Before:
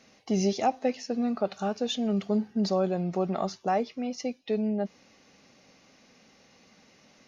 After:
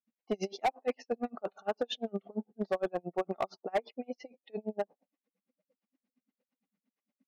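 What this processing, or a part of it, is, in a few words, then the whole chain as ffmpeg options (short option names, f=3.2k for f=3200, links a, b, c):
helicopter radio: -af "afftdn=nr=32:nf=-46,highpass=390,lowpass=3k,aeval=exprs='val(0)*pow(10,-37*(0.5-0.5*cos(2*PI*8.7*n/s))/20)':c=same,asoftclip=type=hard:threshold=-28.5dB,volume=5dB"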